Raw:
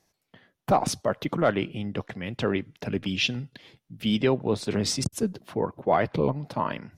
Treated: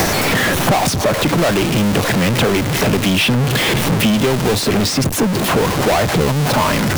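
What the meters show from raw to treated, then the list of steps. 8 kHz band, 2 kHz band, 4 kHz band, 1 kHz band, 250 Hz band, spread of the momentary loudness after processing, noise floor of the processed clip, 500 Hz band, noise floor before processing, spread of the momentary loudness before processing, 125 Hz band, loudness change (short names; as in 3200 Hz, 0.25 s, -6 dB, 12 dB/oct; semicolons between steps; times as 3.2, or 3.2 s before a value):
+15.5 dB, +16.5 dB, +14.0 dB, +11.0 dB, +12.5 dB, 2 LU, -19 dBFS, +10.0 dB, -78 dBFS, 9 LU, +15.0 dB, +12.0 dB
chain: zero-crossing step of -26.5 dBFS; sample leveller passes 3; three-band squash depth 100%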